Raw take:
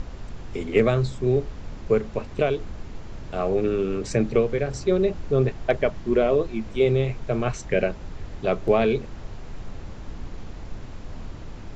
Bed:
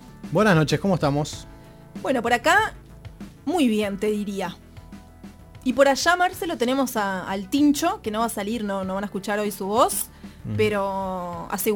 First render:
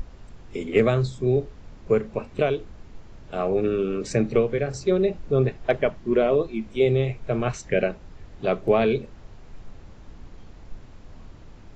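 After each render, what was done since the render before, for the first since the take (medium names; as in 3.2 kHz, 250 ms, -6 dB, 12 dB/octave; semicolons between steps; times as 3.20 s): noise print and reduce 8 dB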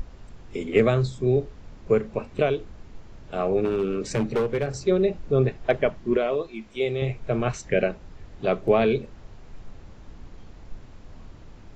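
3.65–4.77 s: hard clipper -19 dBFS; 6.17–7.02 s: bass shelf 440 Hz -10.5 dB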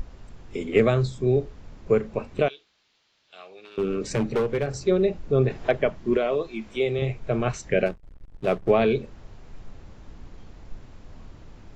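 2.48–3.78 s: band-pass filter 3.9 kHz, Q 1.8; 5.50–6.99 s: three bands compressed up and down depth 40%; 7.86–8.71 s: hysteresis with a dead band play -34 dBFS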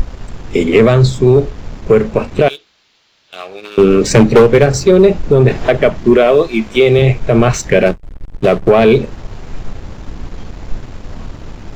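waveshaping leveller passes 1; loudness maximiser +14 dB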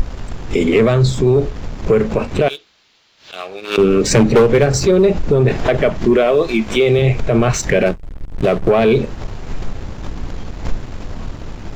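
peak limiter -5.5 dBFS, peak gain reduction 4.5 dB; swell ahead of each attack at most 150 dB/s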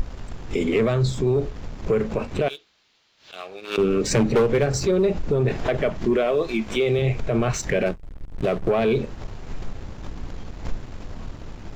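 trim -8 dB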